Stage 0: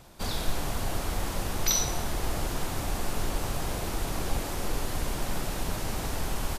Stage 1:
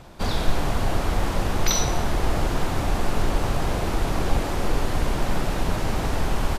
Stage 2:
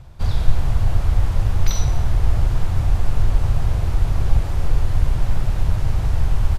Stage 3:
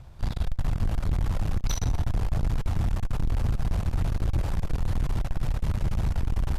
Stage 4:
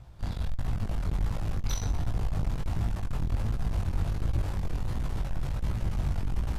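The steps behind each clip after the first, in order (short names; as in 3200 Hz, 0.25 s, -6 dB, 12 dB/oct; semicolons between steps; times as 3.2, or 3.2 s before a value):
LPF 2800 Hz 6 dB/oct; gain +8 dB
resonant low shelf 160 Hz +13 dB, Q 1.5; gain -6.5 dB
tube stage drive 20 dB, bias 0.75
chorus 1.4 Hz, delay 17 ms, depth 5.4 ms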